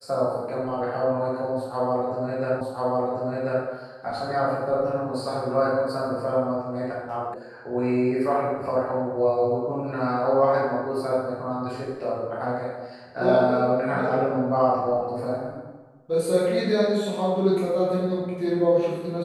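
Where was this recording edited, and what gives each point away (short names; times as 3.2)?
2.61 repeat of the last 1.04 s
7.34 sound cut off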